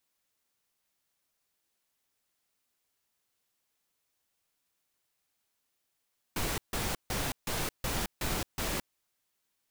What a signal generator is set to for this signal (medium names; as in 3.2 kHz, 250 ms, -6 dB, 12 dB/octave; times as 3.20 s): noise bursts pink, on 0.22 s, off 0.15 s, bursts 7, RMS -32.5 dBFS